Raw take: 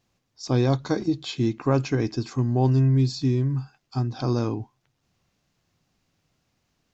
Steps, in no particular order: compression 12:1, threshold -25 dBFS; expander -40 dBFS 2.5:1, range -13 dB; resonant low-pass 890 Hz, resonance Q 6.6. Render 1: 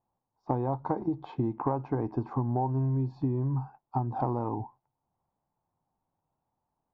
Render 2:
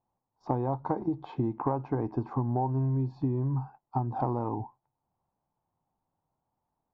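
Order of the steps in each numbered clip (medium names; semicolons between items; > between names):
resonant low-pass > expander > compression; expander > resonant low-pass > compression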